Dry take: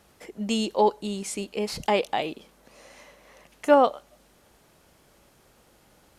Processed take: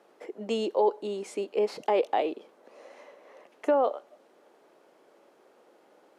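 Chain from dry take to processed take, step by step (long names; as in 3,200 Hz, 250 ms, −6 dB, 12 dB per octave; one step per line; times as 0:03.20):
high-pass filter 370 Hz 24 dB per octave
spectral tilt −4.5 dB per octave
brickwall limiter −15.5 dBFS, peak gain reduction 11 dB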